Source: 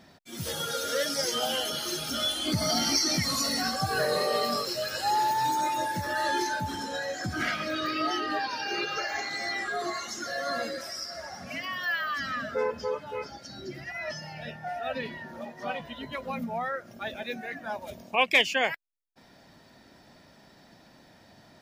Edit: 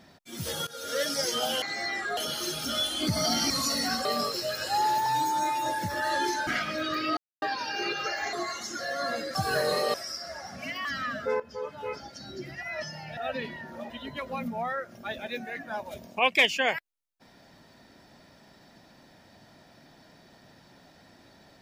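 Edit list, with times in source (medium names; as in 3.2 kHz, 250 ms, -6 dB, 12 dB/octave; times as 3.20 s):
0.67–1.02 s: fade in, from -19.5 dB
2.95–3.24 s: delete
3.79–4.38 s: move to 10.82 s
5.39–5.79 s: stretch 1.5×
6.60–7.39 s: delete
8.09–8.34 s: mute
9.25–9.80 s: move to 1.62 s
11.73–12.14 s: delete
12.69–13.13 s: fade in, from -14 dB
14.46–14.78 s: delete
15.51–15.86 s: delete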